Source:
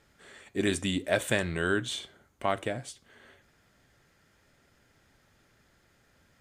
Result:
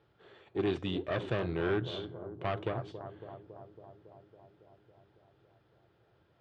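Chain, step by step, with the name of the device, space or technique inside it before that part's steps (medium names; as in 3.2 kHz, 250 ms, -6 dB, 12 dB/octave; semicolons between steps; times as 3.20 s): graphic EQ 250/500/2000 Hz -11/+5/-12 dB; analogue delay pedal into a guitar amplifier (bucket-brigade echo 277 ms, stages 2048, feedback 73%, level -13 dB; valve stage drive 30 dB, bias 0.7; cabinet simulation 87–3400 Hz, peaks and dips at 120 Hz +6 dB, 340 Hz +7 dB, 570 Hz -6 dB); trim +3.5 dB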